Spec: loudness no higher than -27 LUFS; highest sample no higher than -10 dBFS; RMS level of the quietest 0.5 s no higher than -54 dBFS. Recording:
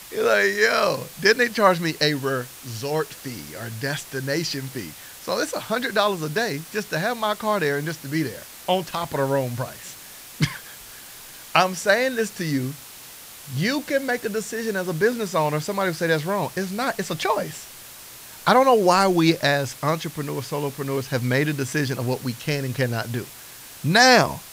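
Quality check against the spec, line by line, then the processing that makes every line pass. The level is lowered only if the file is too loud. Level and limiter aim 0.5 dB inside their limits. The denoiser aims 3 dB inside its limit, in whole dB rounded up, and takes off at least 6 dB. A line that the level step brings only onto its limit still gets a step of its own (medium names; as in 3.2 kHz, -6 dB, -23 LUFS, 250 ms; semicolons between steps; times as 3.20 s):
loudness -22.5 LUFS: fail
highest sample -1.5 dBFS: fail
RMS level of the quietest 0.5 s -42 dBFS: fail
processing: noise reduction 10 dB, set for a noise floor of -42 dBFS; trim -5 dB; peak limiter -10.5 dBFS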